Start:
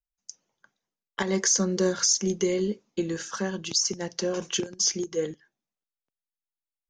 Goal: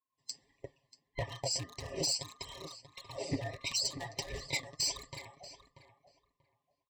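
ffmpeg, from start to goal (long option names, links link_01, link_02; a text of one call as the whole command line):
ffmpeg -i in.wav -filter_complex "[0:a]afftfilt=real='real(if(lt(b,960),b+48*(1-2*mod(floor(b/48),2)),b),0)':imag='imag(if(lt(b,960),b+48*(1-2*mod(floor(b/48),2)),b),0)':win_size=2048:overlap=0.75,highpass=83,aemphasis=mode=reproduction:type=riaa,aecho=1:1:7.3:0.6,dynaudnorm=framelen=120:gausssize=3:maxgain=16dB,alimiter=limit=-11.5dB:level=0:latency=1:release=376,acompressor=threshold=-25dB:ratio=3,flanger=delay=1.6:depth=7.2:regen=36:speed=1.6:shape=triangular,volume=24dB,asoftclip=hard,volume=-24dB,asuperstop=centerf=1400:order=12:qfactor=2.2,asplit=2[link_01][link_02];[link_02]adelay=636,lowpass=frequency=2300:poles=1,volume=-11dB,asplit=2[link_03][link_04];[link_04]adelay=636,lowpass=frequency=2300:poles=1,volume=0.2,asplit=2[link_05][link_06];[link_06]adelay=636,lowpass=frequency=2300:poles=1,volume=0.2[link_07];[link_01][link_03][link_05][link_07]amix=inputs=4:normalize=0,adynamicequalizer=threshold=0.00891:dfrequency=6000:dqfactor=0.7:tfrequency=6000:tqfactor=0.7:attack=5:release=100:ratio=0.375:range=2:mode=boostabove:tftype=highshelf,volume=-2.5dB" out.wav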